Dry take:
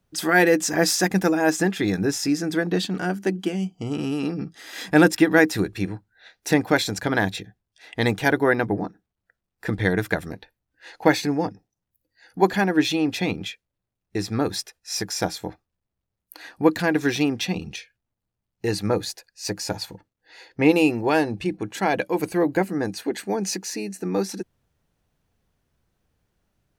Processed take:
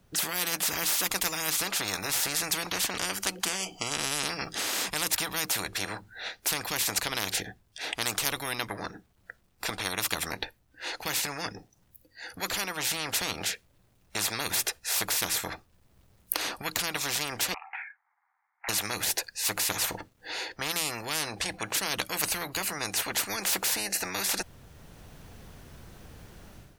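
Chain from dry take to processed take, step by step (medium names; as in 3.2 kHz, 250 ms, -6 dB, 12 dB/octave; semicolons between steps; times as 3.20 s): 17.54–18.69 s: Chebyshev band-pass 760–2200 Hz, order 5; level rider gain up to 14.5 dB; spectrum-flattening compressor 10:1; trim -2.5 dB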